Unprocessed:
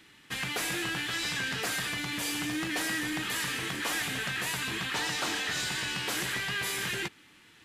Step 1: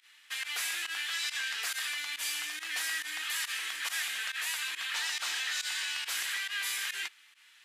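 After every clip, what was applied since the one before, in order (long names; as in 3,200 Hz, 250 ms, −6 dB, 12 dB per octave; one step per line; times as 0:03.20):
high-pass filter 1,500 Hz 12 dB per octave
fake sidechain pumping 139 BPM, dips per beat 1, −19 dB, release 76 ms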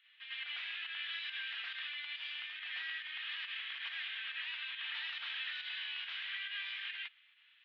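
Butterworth low-pass 3,400 Hz 48 dB per octave
first difference
backwards echo 104 ms −6 dB
level +3.5 dB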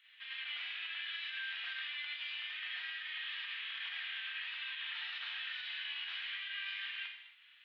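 downward compressor, threshold −43 dBFS, peak gain reduction 6.5 dB
reverb whose tail is shaped and stops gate 300 ms falling, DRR 2 dB
level +2 dB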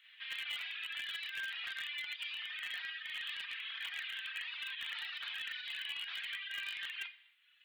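reverb reduction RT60 1.6 s
low-shelf EQ 380 Hz −8.5 dB
in parallel at −11.5 dB: bit-depth reduction 6 bits, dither none
on the sum: level +3 dB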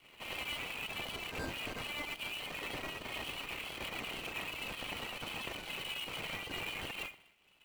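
running median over 25 samples
level +11.5 dB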